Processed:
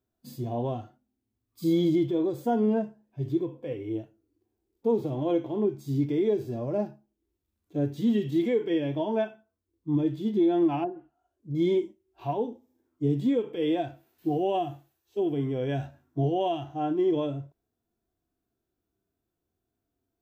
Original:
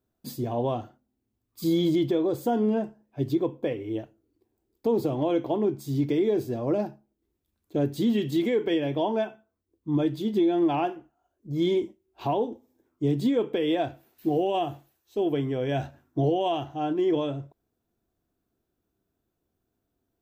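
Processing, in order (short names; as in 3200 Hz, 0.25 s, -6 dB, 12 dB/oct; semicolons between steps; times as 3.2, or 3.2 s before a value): harmonic-percussive split percussive -16 dB; 10.83–11.55 treble ducked by the level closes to 660 Hz, closed at -27.5 dBFS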